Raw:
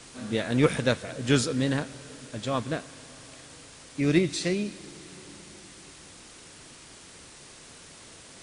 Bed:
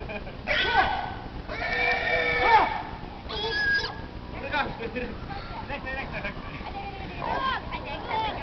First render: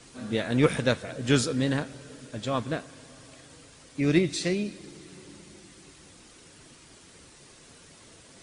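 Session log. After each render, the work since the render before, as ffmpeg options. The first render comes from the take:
-af "afftdn=nr=6:nf=-49"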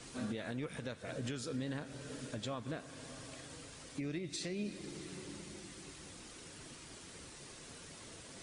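-af "acompressor=threshold=0.0355:ratio=6,alimiter=level_in=2.11:limit=0.0631:level=0:latency=1:release=365,volume=0.473"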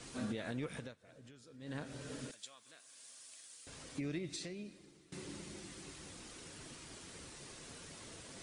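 -filter_complex "[0:a]asettb=1/sr,asplit=3[s0][s1][s2];[s0]atrim=end=2.314[s3];[s1]atrim=start=2.31:end=3.67,asetpts=PTS-STARTPTS,afade=t=in:d=0.004:c=qsin,afade=t=out:st=1.356:d=0.004:c=qsin,aderivative[s4];[s2]atrim=start=3.666[s5];[s3][s4]acrossfade=d=0.004:c1=hsin:c2=qsin[s6];[s6][s5]acrossfade=d=0.004:c1=qsin:c2=hsin,asplit=4[s7][s8][s9][s10];[s7]atrim=end=0.96,asetpts=PTS-STARTPTS,afade=t=out:st=0.75:d=0.21:silence=0.133352[s11];[s8]atrim=start=0.96:end=1.59,asetpts=PTS-STARTPTS,volume=0.133[s12];[s9]atrim=start=1.59:end=5.12,asetpts=PTS-STARTPTS,afade=t=in:d=0.21:silence=0.133352,afade=t=out:st=2.64:d=0.89:c=qua:silence=0.11885[s13];[s10]atrim=start=5.12,asetpts=PTS-STARTPTS,afade=t=in:d=0.004:c=hsin:silence=0.11885[s14];[s11][s12][s13][s14]concat=n=4:v=0:a=1"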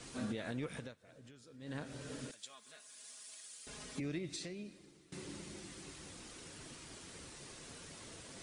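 -filter_complex "[0:a]asettb=1/sr,asplit=3[s0][s1][s2];[s0]atrim=end=2.494[s3];[s1]atrim=start=2.49:end=4,asetpts=PTS-STARTPTS,afade=t=in:d=0.004:c=qsin,afade=t=out:st=1.506:d=0.004:c=qsin,aecho=1:1:4.8:0.94,atrim=end_sample=66591[s4];[s2]atrim=start=3.996[s5];[s3][s4]acrossfade=d=0.004:c1=hsin:c2=qsin[s6];[s6][s5]acrossfade=d=0.004:c1=qsin:c2=hsin"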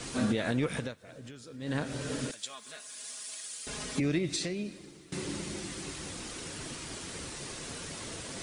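-af "volume=3.55"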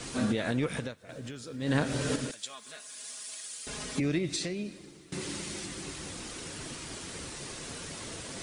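-filter_complex "[0:a]asettb=1/sr,asplit=3[s0][s1][s2];[s0]atrim=end=1.094[s3];[s1]atrim=start=1.09:end=2.16,asetpts=PTS-STARTPTS,afade=t=in:d=0.004:c=qsin,afade=t=out:st=1.066:d=0.004:c=qsin,acontrast=35[s4];[s2]atrim=start=2.156[s5];[s3][s4]acrossfade=d=0.004:c1=hsin:c2=qsin[s6];[s6][s5]acrossfade=d=0.004:c1=qsin:c2=hsin,asettb=1/sr,asplit=3[s7][s8][s9];[s7]atrim=end=5.214[s10];[s8]atrim=start=5.21:end=5.66,asetpts=PTS-STARTPTS,afade=t=in:d=0.004:c=qsin,afade=t=out:st=0.446:d=0.004:c=qsin,tiltshelf=f=970:g=-3[s11];[s9]atrim=start=5.656[s12];[s10][s11]acrossfade=d=0.004:c1=hsin:c2=qsin[s13];[s13][s12]acrossfade=d=0.004:c1=qsin:c2=hsin"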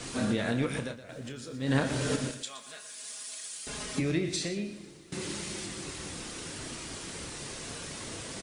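-filter_complex "[0:a]asplit=2[s0][s1];[s1]adelay=30,volume=0.335[s2];[s0][s2]amix=inputs=2:normalize=0,asplit=2[s3][s4];[s4]aecho=0:1:120:0.266[s5];[s3][s5]amix=inputs=2:normalize=0"

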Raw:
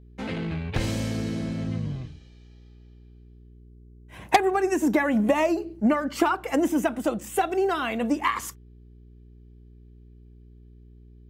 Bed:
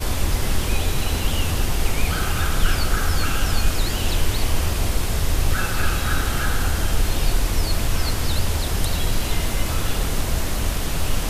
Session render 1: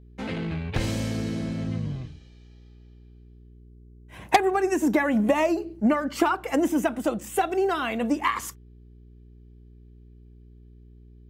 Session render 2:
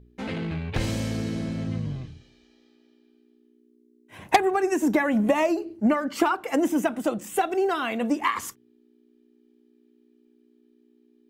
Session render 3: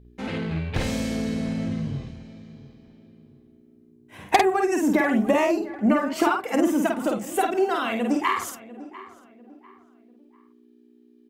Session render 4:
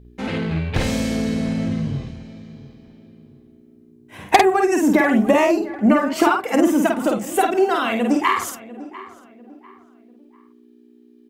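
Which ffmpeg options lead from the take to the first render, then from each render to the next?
-af anull
-af "bandreject=f=60:t=h:w=4,bandreject=f=120:t=h:w=4,bandreject=f=180:t=h:w=4"
-filter_complex "[0:a]asplit=2[s0][s1];[s1]adelay=50,volume=0.668[s2];[s0][s2]amix=inputs=2:normalize=0,asplit=2[s3][s4];[s4]adelay=696,lowpass=f=2200:p=1,volume=0.141,asplit=2[s5][s6];[s6]adelay=696,lowpass=f=2200:p=1,volume=0.35,asplit=2[s7][s8];[s8]adelay=696,lowpass=f=2200:p=1,volume=0.35[s9];[s3][s5][s7][s9]amix=inputs=4:normalize=0"
-af "volume=1.78"

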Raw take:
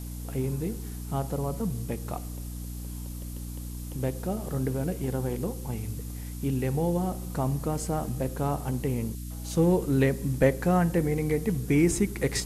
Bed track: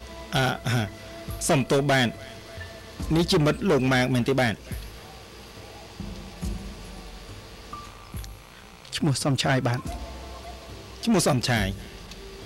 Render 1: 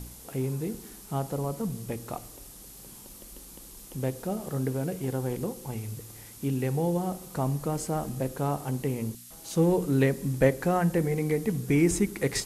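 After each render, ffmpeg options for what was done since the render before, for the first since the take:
-af "bandreject=f=60:t=h:w=4,bandreject=f=120:t=h:w=4,bandreject=f=180:t=h:w=4,bandreject=f=240:t=h:w=4,bandreject=f=300:t=h:w=4"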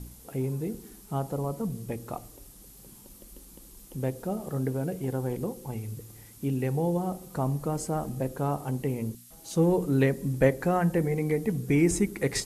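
-af "afftdn=nr=6:nf=-47"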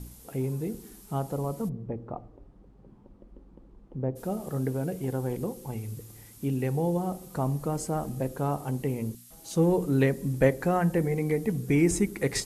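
-filter_complex "[0:a]asplit=3[s0][s1][s2];[s0]afade=t=out:st=1.68:d=0.02[s3];[s1]lowpass=1000,afade=t=in:st=1.68:d=0.02,afade=t=out:st=4.15:d=0.02[s4];[s2]afade=t=in:st=4.15:d=0.02[s5];[s3][s4][s5]amix=inputs=3:normalize=0"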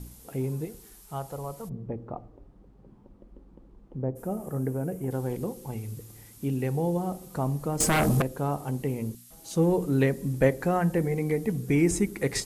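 -filter_complex "[0:a]asettb=1/sr,asplit=3[s0][s1][s2];[s0]atrim=end=0.654[s3];[s1]atrim=start=0.65:end=1.71,asetpts=PTS-STARTPTS,afade=t=in:d=0.004:c=qsin,afade=t=out:st=1.056:d=0.004:c=qsin,equalizer=f=240:t=o:w=1.5:g=-12.5[s4];[s2]atrim=start=1.706[s5];[s3][s4]acrossfade=d=0.004:c1=hsin:c2=qsin[s6];[s6][s5]acrossfade=d=0.004:c1=qsin:c2=hsin,asettb=1/sr,asplit=3[s7][s8][s9];[s7]atrim=end=4.024[s10];[s8]atrim=start=4.02:end=5.11,asetpts=PTS-STARTPTS,afade=t=in:d=0.004:c=qsin,afade=t=out:st=1.086:d=0.004:c=qsin,equalizer=f=4000:t=o:w=1.2:g=-13.5[s11];[s9]atrim=start=5.106[s12];[s10][s11]acrossfade=d=0.004:c1=hsin:c2=qsin[s13];[s13][s12]acrossfade=d=0.004:c1=qsin:c2=hsin,asettb=1/sr,asplit=3[s14][s15][s16];[s14]atrim=end=7.804[s17];[s15]atrim=start=7.8:end=8.22,asetpts=PTS-STARTPTS,afade=t=in:d=0.004:c=qsin,afade=t=out:st=0.416:d=0.004:c=qsin,aeval=exprs='0.119*sin(PI/2*3.55*val(0)/0.119)':c=same[s18];[s16]atrim=start=8.216[s19];[s17][s18]acrossfade=d=0.004:c1=hsin:c2=qsin[s20];[s20][s19]acrossfade=d=0.004:c1=qsin:c2=hsin"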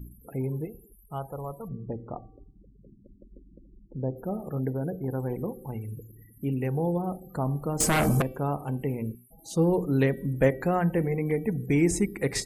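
-af "afftfilt=real='re*gte(hypot(re,im),0.00562)':imag='im*gte(hypot(re,im),0.00562)':win_size=1024:overlap=0.75,bandreject=f=384.6:t=h:w=4,bandreject=f=769.2:t=h:w=4,bandreject=f=1153.8:t=h:w=4,bandreject=f=1538.4:t=h:w=4,bandreject=f=1923:t=h:w=4,bandreject=f=2307.6:t=h:w=4,bandreject=f=2692.2:t=h:w=4,bandreject=f=3076.8:t=h:w=4,bandreject=f=3461.4:t=h:w=4,bandreject=f=3846:t=h:w=4,bandreject=f=4230.6:t=h:w=4,bandreject=f=4615.2:t=h:w=4,bandreject=f=4999.8:t=h:w=4"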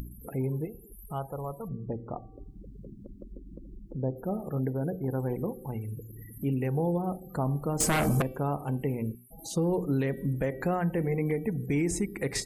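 -af "alimiter=limit=0.1:level=0:latency=1:release=150,acompressor=mode=upward:threshold=0.0178:ratio=2.5"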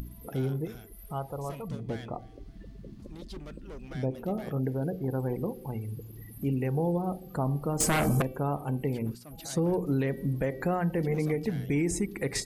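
-filter_complex "[1:a]volume=0.0596[s0];[0:a][s0]amix=inputs=2:normalize=0"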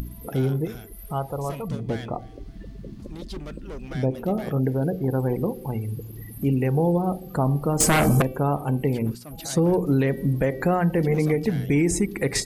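-af "volume=2.24"

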